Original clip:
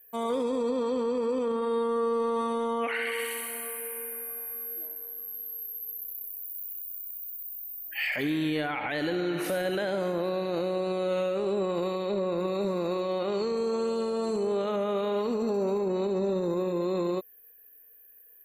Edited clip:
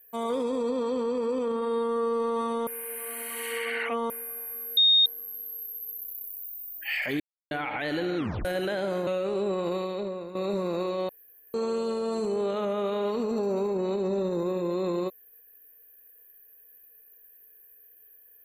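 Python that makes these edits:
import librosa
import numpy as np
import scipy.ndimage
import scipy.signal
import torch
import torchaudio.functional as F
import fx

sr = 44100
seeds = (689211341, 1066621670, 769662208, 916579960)

y = fx.edit(x, sr, fx.reverse_span(start_s=2.67, length_s=1.43),
    fx.bleep(start_s=4.77, length_s=0.29, hz=3700.0, db=-16.0),
    fx.cut(start_s=6.46, length_s=1.1),
    fx.silence(start_s=8.3, length_s=0.31),
    fx.tape_stop(start_s=9.27, length_s=0.28),
    fx.cut(start_s=10.17, length_s=1.01),
    fx.fade_out_to(start_s=11.93, length_s=0.53, floor_db=-14.0),
    fx.room_tone_fill(start_s=13.2, length_s=0.45), tone=tone)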